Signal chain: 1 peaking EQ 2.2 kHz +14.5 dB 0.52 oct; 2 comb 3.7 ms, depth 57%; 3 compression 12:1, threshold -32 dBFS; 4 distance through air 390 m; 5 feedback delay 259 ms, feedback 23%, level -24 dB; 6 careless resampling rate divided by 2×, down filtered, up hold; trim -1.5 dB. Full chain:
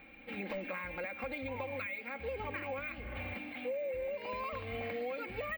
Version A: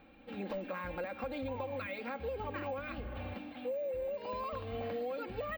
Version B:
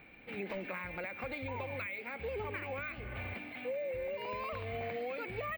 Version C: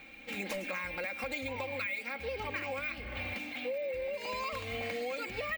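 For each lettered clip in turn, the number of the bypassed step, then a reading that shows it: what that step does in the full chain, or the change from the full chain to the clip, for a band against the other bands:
1, 2 kHz band -6.5 dB; 2, 125 Hz band +3.0 dB; 4, 4 kHz band +8.0 dB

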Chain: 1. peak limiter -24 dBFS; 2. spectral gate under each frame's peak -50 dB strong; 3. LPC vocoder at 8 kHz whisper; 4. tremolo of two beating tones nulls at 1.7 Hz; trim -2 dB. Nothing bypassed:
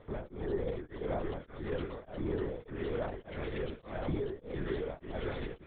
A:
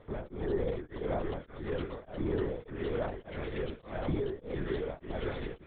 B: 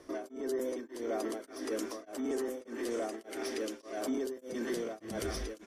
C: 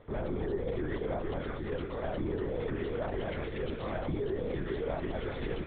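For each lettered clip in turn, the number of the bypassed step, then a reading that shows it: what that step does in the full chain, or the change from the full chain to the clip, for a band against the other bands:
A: 1, mean gain reduction 1.5 dB; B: 3, 4 kHz band +4.5 dB; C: 4, loudness change +3.0 LU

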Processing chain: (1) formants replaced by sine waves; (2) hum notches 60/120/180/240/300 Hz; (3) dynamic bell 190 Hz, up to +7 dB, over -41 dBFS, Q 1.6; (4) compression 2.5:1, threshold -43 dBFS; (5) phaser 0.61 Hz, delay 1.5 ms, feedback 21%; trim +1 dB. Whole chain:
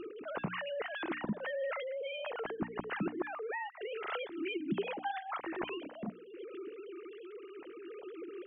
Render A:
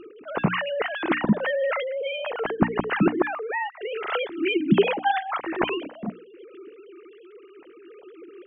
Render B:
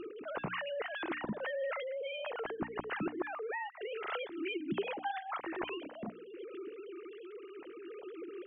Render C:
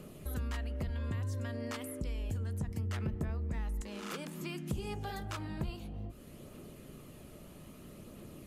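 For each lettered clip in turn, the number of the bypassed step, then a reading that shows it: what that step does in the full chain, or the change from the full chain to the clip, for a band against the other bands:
4, mean gain reduction 8.5 dB; 3, 125 Hz band -3.0 dB; 1, 125 Hz band +20.5 dB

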